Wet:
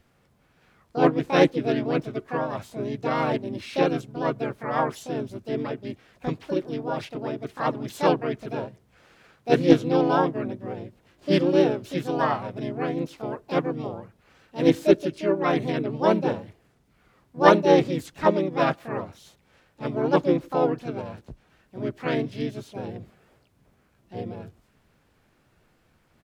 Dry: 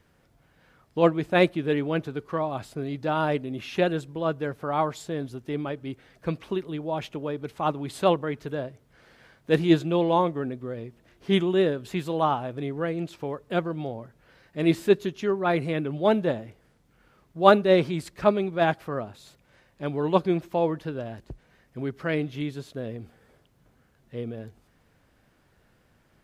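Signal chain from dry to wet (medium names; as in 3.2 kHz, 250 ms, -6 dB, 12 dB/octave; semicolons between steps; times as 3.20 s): dynamic bell 350 Hz, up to +4 dB, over -36 dBFS, Q 2.7; harmony voices -3 st -2 dB, +7 st -3 dB; loudspeaker Doppler distortion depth 0.12 ms; trim -3.5 dB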